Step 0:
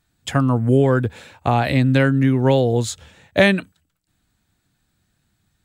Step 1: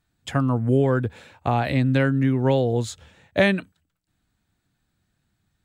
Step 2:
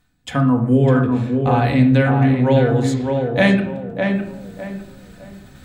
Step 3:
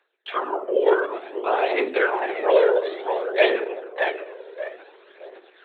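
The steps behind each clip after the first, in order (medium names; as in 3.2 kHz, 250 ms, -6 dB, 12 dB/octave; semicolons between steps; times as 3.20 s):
treble shelf 4.3 kHz -5 dB; trim -4 dB
reverberation RT60 0.65 s, pre-delay 4 ms, DRR 2 dB; reverse; upward compressor, threshold -25 dBFS; reverse; tape echo 606 ms, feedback 34%, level -3 dB, low-pass 1.8 kHz; trim +1.5 dB
LPC vocoder at 8 kHz whisper; Chebyshev high-pass 380 Hz, order 5; phaser 0.56 Hz, delay 2.2 ms, feedback 46%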